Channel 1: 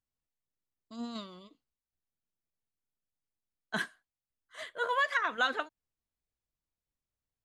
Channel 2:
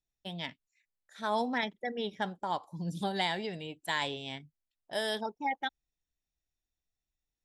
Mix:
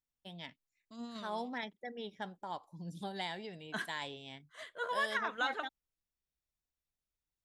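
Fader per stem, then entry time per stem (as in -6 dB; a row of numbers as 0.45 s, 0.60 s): -5.5 dB, -8.5 dB; 0.00 s, 0.00 s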